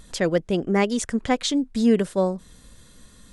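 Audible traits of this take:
background noise floor −51 dBFS
spectral slope −5.0 dB per octave

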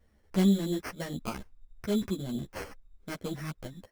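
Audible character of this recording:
aliases and images of a low sample rate 3,700 Hz, jitter 0%
a shimmering, thickened sound

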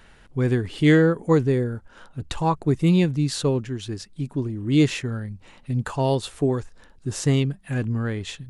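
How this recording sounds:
background noise floor −52 dBFS
spectral slope −6.5 dB per octave

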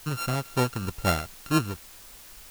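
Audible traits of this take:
a buzz of ramps at a fixed pitch in blocks of 32 samples
tremolo triangle 3.9 Hz, depth 65%
a quantiser's noise floor 8 bits, dither triangular

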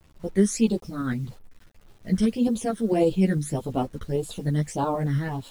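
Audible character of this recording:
phaser sweep stages 12, 1.7 Hz, lowest notch 790–2,000 Hz
tremolo saw up 8.9 Hz, depth 45%
a quantiser's noise floor 10 bits, dither none
a shimmering, thickened sound

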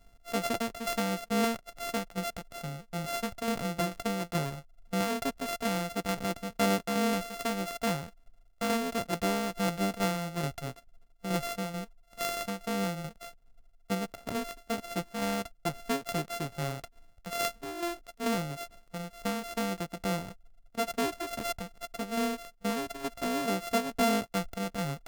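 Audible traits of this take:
a buzz of ramps at a fixed pitch in blocks of 64 samples
tremolo saw down 2.3 Hz, depth 50%

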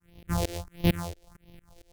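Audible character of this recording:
a buzz of ramps at a fixed pitch in blocks of 256 samples
phaser sweep stages 4, 1.5 Hz, lowest notch 180–1,400 Hz
tremolo saw up 4.4 Hz, depth 100%

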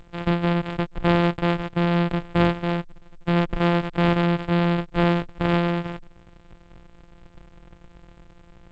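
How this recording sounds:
a buzz of ramps at a fixed pitch in blocks of 256 samples
G.722

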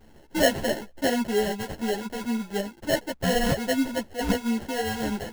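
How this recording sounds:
aliases and images of a low sample rate 1,200 Hz, jitter 0%
a shimmering, thickened sound

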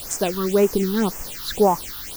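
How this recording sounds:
a quantiser's noise floor 6 bits, dither triangular
phaser sweep stages 6, 1.9 Hz, lowest notch 580–3,900 Hz

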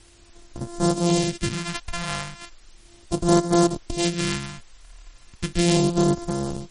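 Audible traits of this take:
a buzz of ramps at a fixed pitch in blocks of 128 samples
phaser sweep stages 2, 0.36 Hz, lowest notch 320–2,400 Hz
a quantiser's noise floor 10 bits, dither triangular
MP3

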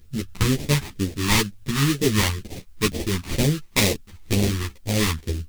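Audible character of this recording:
aliases and images of a low sample rate 1,500 Hz, jitter 20%
phaser sweep stages 2, 2.1 Hz, lowest notch 510–1,100 Hz
a quantiser's noise floor 12 bits, dither triangular
a shimmering, thickened sound

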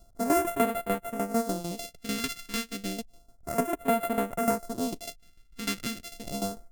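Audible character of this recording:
a buzz of ramps at a fixed pitch in blocks of 64 samples
tremolo saw down 6.7 Hz, depth 75%
phaser sweep stages 2, 0.31 Hz, lowest notch 680–5,000 Hz

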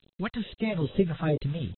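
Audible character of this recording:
a quantiser's noise floor 8 bits, dither none
phaser sweep stages 2, 2.4 Hz, lowest notch 290–1,600 Hz
AAC

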